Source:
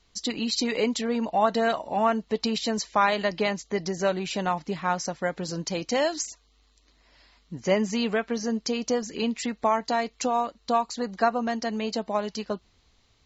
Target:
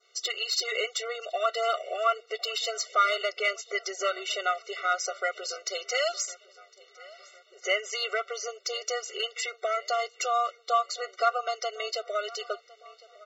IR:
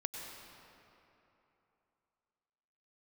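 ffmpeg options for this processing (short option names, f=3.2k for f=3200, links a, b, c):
-filter_complex "[0:a]adynamicequalizer=threshold=0.0112:dfrequency=2800:dqfactor=1.3:tfrequency=2800:tqfactor=1.3:attack=5:release=100:ratio=0.375:range=1.5:mode=cutabove:tftype=bell,acrossover=split=900[a][b];[a]acompressor=threshold=-36dB:ratio=10[c];[b]asplit=2[d][e];[e]highpass=f=720:p=1,volume=10dB,asoftclip=type=tanh:threshold=-14dB[f];[d][f]amix=inputs=2:normalize=0,lowpass=f=3.5k:p=1,volume=-6dB[g];[c][g]amix=inputs=2:normalize=0,asplit=2[h][i];[i]adelay=1057,lowpass=f=4k:p=1,volume=-21dB,asplit=2[j][k];[k]adelay=1057,lowpass=f=4k:p=1,volume=0.52,asplit=2[l][m];[m]adelay=1057,lowpass=f=4k:p=1,volume=0.52,asplit=2[n][o];[o]adelay=1057,lowpass=f=4k:p=1,volume=0.52[p];[h][j][l][n][p]amix=inputs=5:normalize=0,afftfilt=real='re*eq(mod(floor(b*sr/1024/380),2),1)':imag='im*eq(mod(floor(b*sr/1024/380),2),1)':win_size=1024:overlap=0.75,volume=4dB"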